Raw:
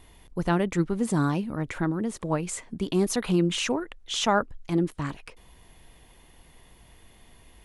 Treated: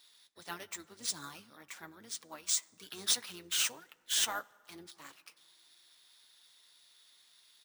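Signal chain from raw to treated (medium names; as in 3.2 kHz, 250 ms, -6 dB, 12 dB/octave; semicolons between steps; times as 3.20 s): high-pass 120 Hz 24 dB/octave; differentiator; sine folder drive 6 dB, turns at -18 dBFS; harmony voices -12 st -12 dB, +3 st -15 dB; flange 1.8 Hz, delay 6.3 ms, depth 3 ms, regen -47%; plate-style reverb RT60 2.3 s, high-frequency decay 0.4×, DRR 18.5 dB; careless resampling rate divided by 3×, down none, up hold; upward expansion 1.5:1, over -41 dBFS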